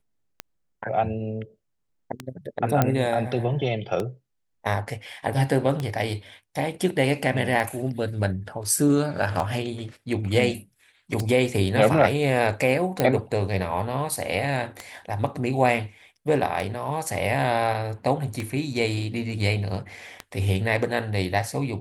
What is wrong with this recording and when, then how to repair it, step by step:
scratch tick 33 1/3 rpm −14 dBFS
0:02.82: click −6 dBFS
0:13.00: click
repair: click removal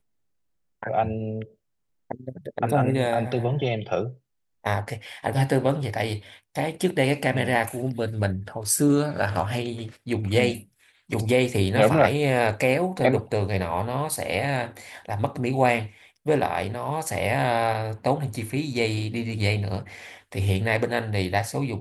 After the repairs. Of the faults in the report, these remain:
0:02.82: click
0:13.00: click

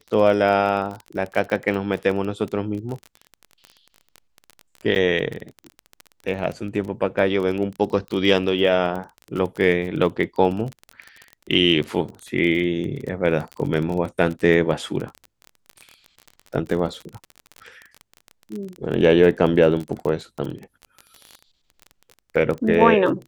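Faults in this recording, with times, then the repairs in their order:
surface crackle 25 per second −27 dBFS
0:04.95–0:04.96: drop-out 8.7 ms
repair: click removal
repair the gap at 0:04.95, 8.7 ms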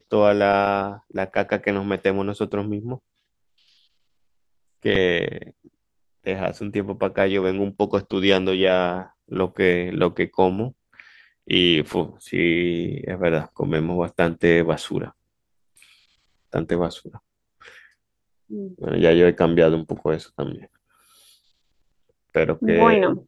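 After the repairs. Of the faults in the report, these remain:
none of them is left

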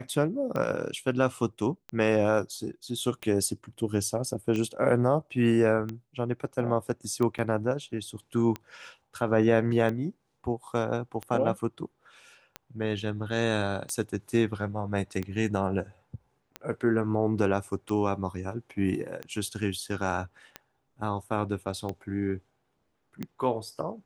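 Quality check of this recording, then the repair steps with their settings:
scratch tick 45 rpm −20 dBFS
0:07.38–0:07.39: drop-out 6.6 ms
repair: click removal
repair the gap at 0:07.38, 6.6 ms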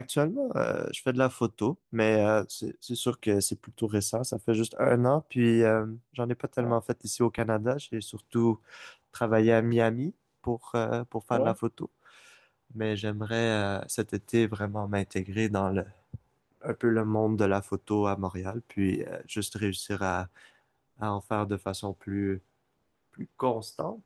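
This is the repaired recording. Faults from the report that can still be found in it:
none of them is left

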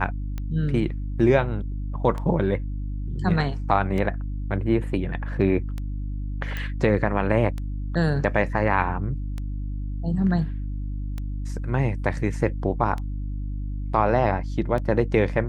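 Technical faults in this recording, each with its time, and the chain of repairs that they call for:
mains hum 50 Hz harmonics 6 −29 dBFS
scratch tick 33 1/3 rpm −19 dBFS
0:06.57: click −17 dBFS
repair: click removal
hum removal 50 Hz, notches 6

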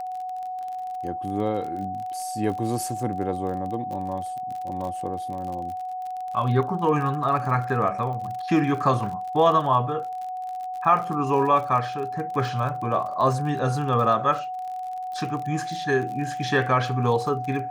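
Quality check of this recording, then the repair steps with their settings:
surface crackle 47 per second −32 dBFS
whistle 740 Hz −29 dBFS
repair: click removal
notch filter 740 Hz, Q 30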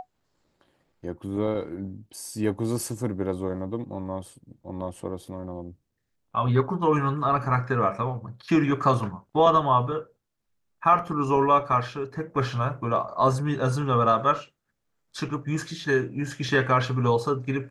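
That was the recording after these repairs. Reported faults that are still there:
none of them is left

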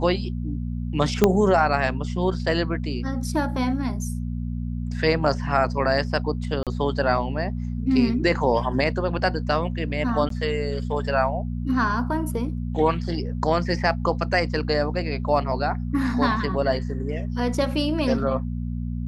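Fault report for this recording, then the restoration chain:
mains hum 60 Hz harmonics 4 −28 dBFS
0:01.24: click −3 dBFS
0:06.63–0:06.67: drop-out 37 ms
0:10.29–0:10.30: drop-out 13 ms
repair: click removal
hum removal 60 Hz, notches 4
repair the gap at 0:06.63, 37 ms
repair the gap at 0:10.29, 13 ms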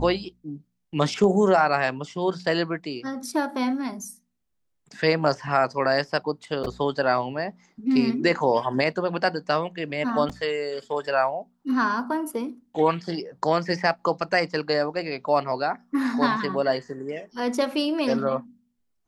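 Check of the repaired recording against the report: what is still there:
0:01.24: click

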